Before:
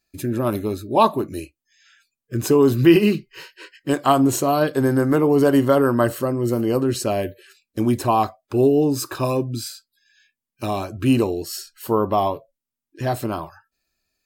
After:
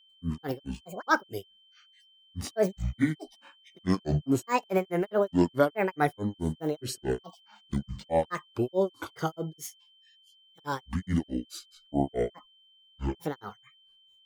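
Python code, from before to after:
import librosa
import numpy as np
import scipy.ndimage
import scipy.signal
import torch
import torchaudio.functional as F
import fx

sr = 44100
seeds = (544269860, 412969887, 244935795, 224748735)

y = fx.granulator(x, sr, seeds[0], grain_ms=177.0, per_s=4.7, spray_ms=100.0, spread_st=12)
y = y + 10.0 ** (-54.0 / 20.0) * np.sin(2.0 * np.pi * 3100.0 * np.arange(len(y)) / sr)
y = F.gain(torch.from_numpy(y), -5.0).numpy()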